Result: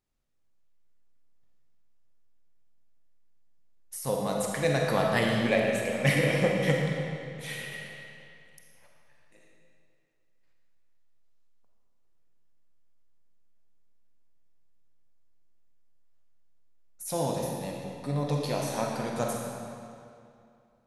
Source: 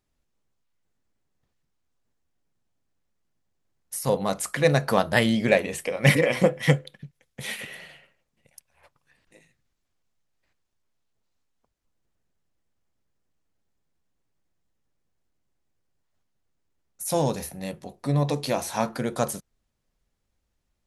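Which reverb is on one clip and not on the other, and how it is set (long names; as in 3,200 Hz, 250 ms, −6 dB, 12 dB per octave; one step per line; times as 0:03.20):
comb and all-pass reverb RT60 2.5 s, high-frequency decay 0.85×, pre-delay 5 ms, DRR −1 dB
level −7 dB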